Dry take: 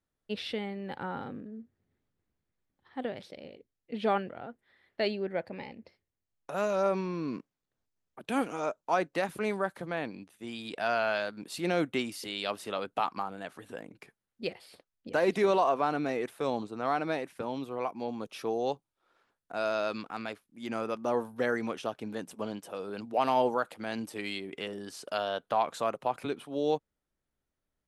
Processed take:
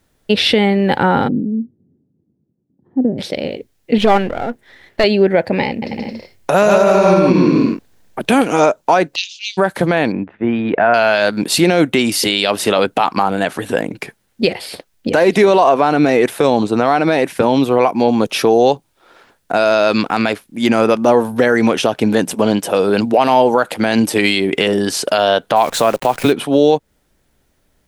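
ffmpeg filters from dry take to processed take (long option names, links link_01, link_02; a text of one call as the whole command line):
ffmpeg -i in.wav -filter_complex "[0:a]asplit=3[link_01][link_02][link_03];[link_01]afade=type=out:start_time=1.27:duration=0.02[link_04];[link_02]asuperpass=centerf=210:order=4:qfactor=0.99,afade=type=in:start_time=1.27:duration=0.02,afade=type=out:start_time=3.18:duration=0.02[link_05];[link_03]afade=type=in:start_time=3.18:duration=0.02[link_06];[link_04][link_05][link_06]amix=inputs=3:normalize=0,asettb=1/sr,asplit=3[link_07][link_08][link_09];[link_07]atrim=end=3.984[link_10];[link_08]atrim=start=3.98:end=5.04,asetpts=PTS-STARTPTS,afade=type=in:duration=0.004:curve=qsin,afade=type=out:start_time=1.056:duration=0.004:curve=qsin,aeval=exprs='if(lt(val(0),0),0.447*val(0),val(0))':channel_layout=same[link_11];[link_09]atrim=start=5.036[link_12];[link_10][link_11]acrossfade=duration=0.004:curve1=hsin:curve2=qsin[link_13];[link_13][link_12]acrossfade=duration=0.004:curve1=qsin:curve2=hsin,asettb=1/sr,asplit=3[link_14][link_15][link_16];[link_14]atrim=end=5.694[link_17];[link_15]atrim=start=5.69:end=8.42,asetpts=PTS-STARTPTS,afade=type=in:duration=0.004:curve=qsin,afade=type=out:start_time=2.726:duration=0.004:curve=qsin,aecho=1:1:130|221|284.7|329.3|360.5|382.4:0.794|0.631|0.501|0.398|0.316|0.251,atrim=end_sample=120393[link_18];[link_16]atrim=start=8.416[link_19];[link_17][link_18]acrossfade=duration=0.004:curve1=hsin:curve2=qsin[link_20];[link_20][link_19]acrossfade=duration=0.004:curve1=qsin:curve2=hsin,asplit=3[link_21][link_22][link_23];[link_21]afade=type=out:start_time=9.14:duration=0.02[link_24];[link_22]asuperpass=centerf=4300:order=12:qfactor=1.1,afade=type=in:start_time=9.14:duration=0.02,afade=type=out:start_time=9.57:duration=0.02[link_25];[link_23]afade=type=in:start_time=9.57:duration=0.02[link_26];[link_24][link_25][link_26]amix=inputs=3:normalize=0,asettb=1/sr,asplit=3[link_27][link_28][link_29];[link_27]atrim=end=10.124[link_30];[link_28]atrim=start=10.12:end=10.94,asetpts=PTS-STARTPTS,afade=type=in:duration=0.004:curve=qsin,afade=type=out:start_time=0.816:duration=0.004:curve=qsin,lowpass=frequency=1900:width=0.5412,lowpass=frequency=1900:width=1.3066[link_31];[link_29]atrim=start=10.936[link_32];[link_30][link_31]acrossfade=duration=0.004:curve1=hsin:curve2=qsin[link_33];[link_33][link_32]acrossfade=duration=0.004:curve1=qsin:curve2=hsin,asplit=3[link_34][link_35][link_36];[link_34]afade=type=out:start_time=25.55:duration=0.02[link_37];[link_35]acrusher=bits=9:dc=4:mix=0:aa=0.000001,afade=type=in:start_time=25.55:duration=0.02,afade=type=out:start_time=26.31:duration=0.02[link_38];[link_36]afade=type=in:start_time=26.31:duration=0.02[link_39];[link_37][link_38][link_39]amix=inputs=3:normalize=0,equalizer=frequency=1200:width=3.9:gain=-4.5,acompressor=threshold=-32dB:ratio=4,alimiter=level_in=26dB:limit=-1dB:release=50:level=0:latency=1,volume=-1dB" out.wav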